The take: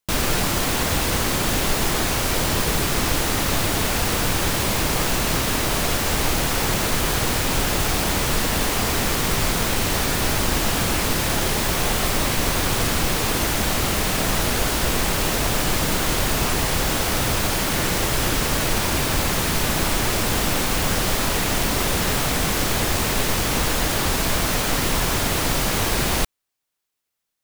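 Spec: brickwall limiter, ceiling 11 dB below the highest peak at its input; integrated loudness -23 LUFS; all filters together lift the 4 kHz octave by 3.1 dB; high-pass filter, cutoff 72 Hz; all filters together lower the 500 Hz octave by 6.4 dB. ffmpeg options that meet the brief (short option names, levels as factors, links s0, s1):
-af "highpass=72,equalizer=f=500:t=o:g=-8.5,equalizer=f=4000:t=o:g=4,volume=1.58,alimiter=limit=0.168:level=0:latency=1"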